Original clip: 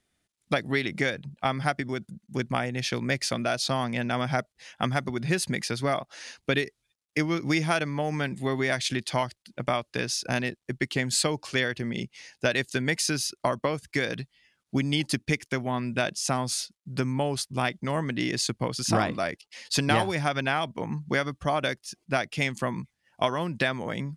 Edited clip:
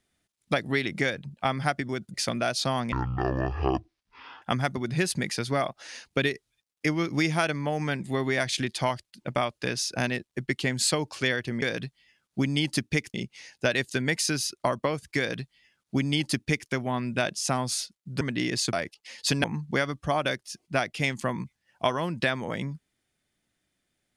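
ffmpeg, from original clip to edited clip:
-filter_complex "[0:a]asplit=9[a][b][c][d][e][f][g][h][i];[a]atrim=end=2.142[j];[b]atrim=start=3.178:end=3.964[k];[c]atrim=start=3.96:end=4.74,asetpts=PTS-STARTPTS,asetrate=22932,aresample=44100[l];[d]atrim=start=4.736:end=11.942[m];[e]atrim=start=13.978:end=15.502[n];[f]atrim=start=11.938:end=17.012[o];[g]atrim=start=18.018:end=18.542[p];[h]atrim=start=19.198:end=19.912[q];[i]atrim=start=20.818[r];[j][k]acrossfade=d=0.004:c1=hsin:c2=hsin[s];[s][l]acrossfade=d=0.004:c1=hsin:c2=hsin[t];[t][m]acrossfade=d=0.004:c1=hsin:c2=hsin[u];[u][n]acrossfade=d=0.004:c1=hsin:c2=hsin[v];[v][o]acrossfade=d=0.004:c1=hsin:c2=hsin[w];[w][p]acrossfade=d=0.004:c1=hsin:c2=hsin[x];[x][q]acrossfade=d=0.004:c1=hsin:c2=hsin[y];[y][r]acrossfade=d=0.004:c1=hsin:c2=hsin"

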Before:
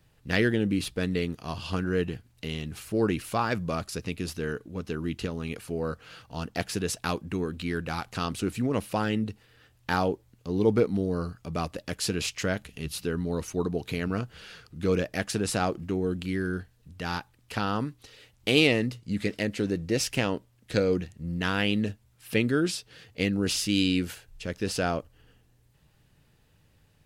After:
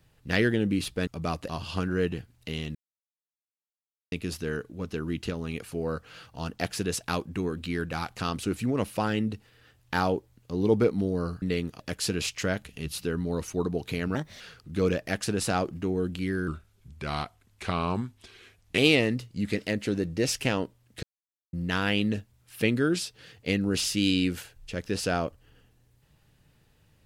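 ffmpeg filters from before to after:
-filter_complex "[0:a]asplit=13[a][b][c][d][e][f][g][h][i][j][k][l][m];[a]atrim=end=1.072[n];[b]atrim=start=11.378:end=11.802[o];[c]atrim=start=1.448:end=2.71,asetpts=PTS-STARTPTS,afade=t=out:st=1.258:d=0.004:c=hsin[p];[d]atrim=start=2.71:end=4.08,asetpts=PTS-STARTPTS,volume=0[q];[e]atrim=start=4.08:end=11.382,asetpts=PTS-STARTPTS,afade=t=in:d=0.004:c=hsin[r];[f]atrim=start=1.068:end=1.452[s];[g]atrim=start=11.798:end=14.154[t];[h]atrim=start=14.15:end=14.47,asetpts=PTS-STARTPTS,asetrate=55566,aresample=44100[u];[i]atrim=start=14.466:end=16.544[v];[j]atrim=start=16.54:end=18.5,asetpts=PTS-STARTPTS,asetrate=37485,aresample=44100,atrim=end_sample=101689,asetpts=PTS-STARTPTS[w];[k]atrim=start=18.496:end=20.75,asetpts=PTS-STARTPTS,afade=t=out:st=2.25:d=0.004:c=hsin[x];[l]atrim=start=20.75:end=21.25,asetpts=PTS-STARTPTS,volume=0[y];[m]atrim=start=21.25,asetpts=PTS-STARTPTS,afade=t=in:d=0.004:c=hsin[z];[n][o]acrossfade=d=0.004:c1=hsin:c2=hsin[aa];[p][q][r]concat=n=3:v=0:a=1[ab];[aa][ab]acrossfade=d=0.004:c1=hsin:c2=hsin[ac];[ac][s]acrossfade=d=0.004:c1=hsin:c2=hsin[ad];[ad][t]acrossfade=d=0.004:c1=hsin:c2=hsin[ae];[ae][u]acrossfade=d=0.004:c1=hsin:c2=hsin[af];[af][v]acrossfade=d=0.004:c1=hsin:c2=hsin[ag];[ag][w]acrossfade=d=0.004:c1=hsin:c2=hsin[ah];[x][y][z]concat=n=3:v=0:a=1[ai];[ah][ai]acrossfade=d=0.004:c1=hsin:c2=hsin"

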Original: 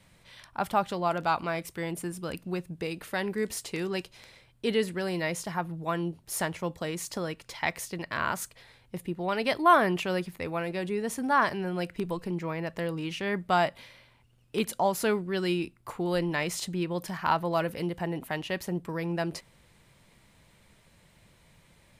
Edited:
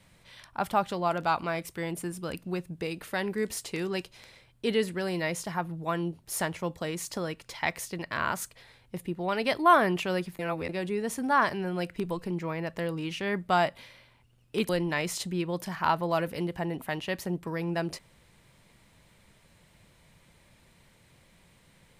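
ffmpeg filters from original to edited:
-filter_complex "[0:a]asplit=4[a][b][c][d];[a]atrim=end=10.392[e];[b]atrim=start=10.388:end=10.692,asetpts=PTS-STARTPTS,areverse[f];[c]atrim=start=10.688:end=14.692[g];[d]atrim=start=16.108[h];[e][f]acrossfade=d=0.004:c1=hsin:c2=hsin[i];[i][g]acrossfade=d=0.004:c1=hsin:c2=hsin[j];[j][h]acrossfade=d=0.004:c1=hsin:c2=hsin"

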